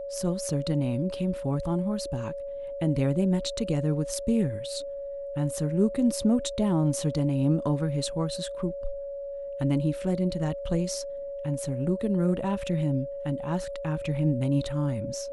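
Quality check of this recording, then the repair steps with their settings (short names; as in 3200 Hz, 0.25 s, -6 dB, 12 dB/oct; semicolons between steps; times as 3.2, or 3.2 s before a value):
tone 560 Hz -33 dBFS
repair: notch 560 Hz, Q 30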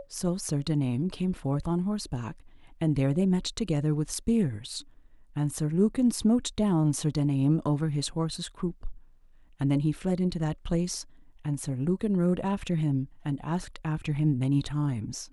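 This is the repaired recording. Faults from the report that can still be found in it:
none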